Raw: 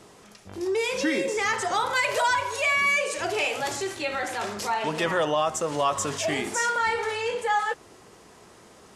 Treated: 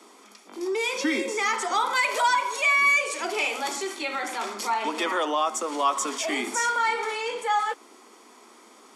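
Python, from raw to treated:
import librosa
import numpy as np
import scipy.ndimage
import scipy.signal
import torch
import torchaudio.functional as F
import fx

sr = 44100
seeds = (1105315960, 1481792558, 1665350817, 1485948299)

y = scipy.signal.sosfilt(scipy.signal.butter(16, 220.0, 'highpass', fs=sr, output='sos'), x)
y = y + 0.41 * np.pad(y, (int(0.9 * sr / 1000.0), 0))[:len(y)]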